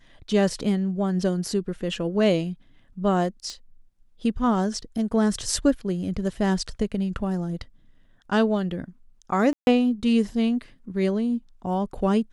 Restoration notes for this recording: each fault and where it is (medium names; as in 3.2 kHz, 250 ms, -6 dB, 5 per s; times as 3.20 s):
3.50 s: pop -22 dBFS
9.53–9.67 s: dropout 141 ms